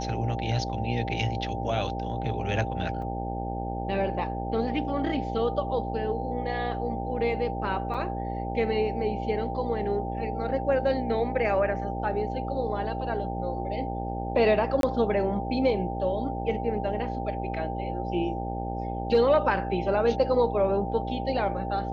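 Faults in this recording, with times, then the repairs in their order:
buzz 60 Hz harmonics 15 -33 dBFS
tone 790 Hz -34 dBFS
3.02 gap 3.3 ms
7.94–7.95 gap 6 ms
14.81–14.83 gap 22 ms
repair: notch 790 Hz, Q 30; de-hum 60 Hz, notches 15; interpolate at 3.02, 3.3 ms; interpolate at 7.94, 6 ms; interpolate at 14.81, 22 ms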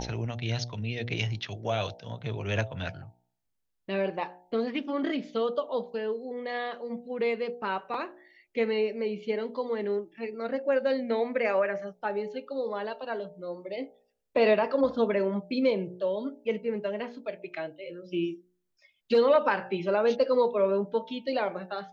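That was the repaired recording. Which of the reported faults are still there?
none

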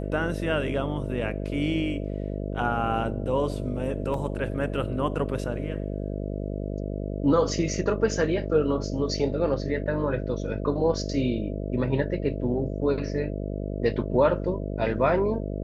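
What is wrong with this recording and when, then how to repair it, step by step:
buzz 50 Hz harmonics 13 -31 dBFS
4.14 gap 2.3 ms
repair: de-hum 50 Hz, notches 13; interpolate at 4.14, 2.3 ms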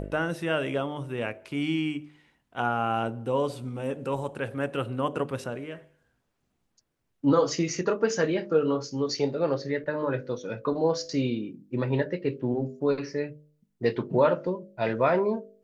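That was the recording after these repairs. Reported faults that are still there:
none

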